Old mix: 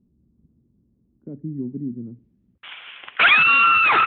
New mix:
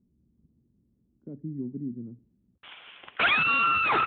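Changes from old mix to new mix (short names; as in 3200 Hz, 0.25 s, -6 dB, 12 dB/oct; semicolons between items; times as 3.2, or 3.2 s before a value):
speech -5.5 dB; background: add bell 2100 Hz -10 dB 2.5 oct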